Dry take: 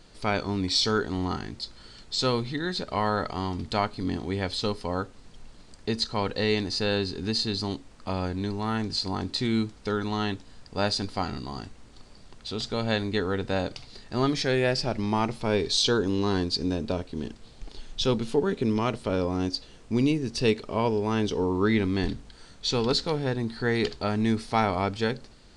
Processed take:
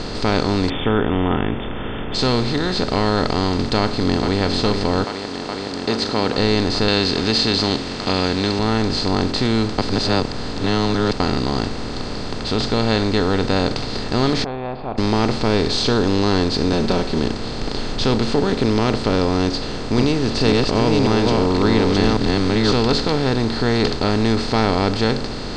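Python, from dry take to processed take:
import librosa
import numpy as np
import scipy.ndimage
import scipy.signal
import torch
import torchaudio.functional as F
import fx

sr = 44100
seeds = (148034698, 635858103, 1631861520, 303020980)

y = fx.brickwall_lowpass(x, sr, high_hz=3600.0, at=(0.68, 2.14), fade=0.02)
y = fx.echo_throw(y, sr, start_s=3.8, length_s=0.61, ms=420, feedback_pct=80, wet_db=-11.5)
y = fx.highpass(y, sr, hz=fx.line((5.03, 690.0), (6.36, 220.0)), slope=12, at=(5.03, 6.36), fade=0.02)
y = fx.weighting(y, sr, curve='D', at=(6.88, 8.59))
y = fx.formant_cascade(y, sr, vowel='a', at=(14.44, 14.98))
y = fx.comb(y, sr, ms=5.3, depth=0.89, at=(16.72, 17.19))
y = fx.reverse_delay(y, sr, ms=548, wet_db=-1.5, at=(19.43, 22.73))
y = fx.edit(y, sr, fx.reverse_span(start_s=9.78, length_s=1.42), tone=tone)
y = fx.bin_compress(y, sr, power=0.4)
y = scipy.signal.sosfilt(scipy.signal.cheby1(8, 1.0, 9200.0, 'lowpass', fs=sr, output='sos'), y)
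y = fx.tilt_eq(y, sr, slope=-1.5)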